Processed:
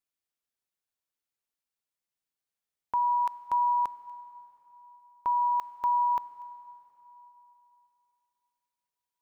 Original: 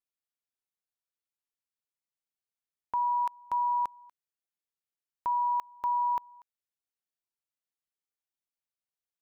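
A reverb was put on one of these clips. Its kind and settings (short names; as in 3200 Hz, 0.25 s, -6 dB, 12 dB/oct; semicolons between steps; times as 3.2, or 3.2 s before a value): plate-style reverb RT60 3.5 s, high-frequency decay 0.9×, DRR 15.5 dB; gain +2 dB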